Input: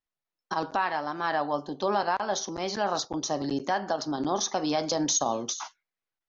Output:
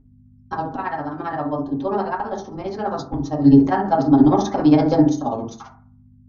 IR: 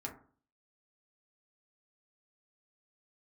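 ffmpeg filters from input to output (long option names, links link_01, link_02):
-filter_complex "[0:a]aemphasis=mode=reproduction:type=riaa,asettb=1/sr,asplit=3[link_01][link_02][link_03];[link_01]atrim=end=3.424[link_04];[link_02]atrim=start=3.42:end=5.02,asetpts=PTS-STARTPTS,afade=type=in:duration=0.004:curve=qsin,afade=type=out:start_time=1.596:duration=0.004:curve=qsin,acontrast=76[link_05];[link_03]atrim=start=5.016[link_06];[link_04][link_05]acrossfade=duration=0.004:curve1=hsin:curve2=qsin[link_07];[link_07][link_06]acrossfade=duration=0.004:curve1=qsin:curve2=hsin,aeval=exprs='val(0)+0.00316*(sin(2*PI*50*n/s)+sin(2*PI*2*50*n/s)/2+sin(2*PI*3*50*n/s)/3+sin(2*PI*4*50*n/s)/4+sin(2*PI*5*50*n/s)/5)':channel_layout=same,tremolo=f=15:d=0.91[link_08];[1:a]atrim=start_sample=2205[link_09];[link_08][link_09]afir=irnorm=-1:irlink=0,volume=5dB"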